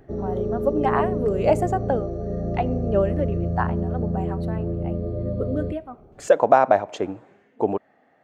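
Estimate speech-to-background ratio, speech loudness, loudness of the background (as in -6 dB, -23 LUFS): 2.5 dB, -24.5 LUFS, -27.0 LUFS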